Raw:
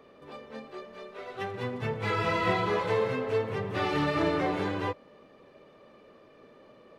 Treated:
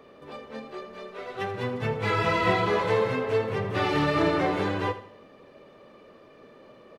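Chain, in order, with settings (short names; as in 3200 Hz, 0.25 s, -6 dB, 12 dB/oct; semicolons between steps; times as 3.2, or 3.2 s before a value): feedback echo 80 ms, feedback 38%, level -13.5 dB; gain +3.5 dB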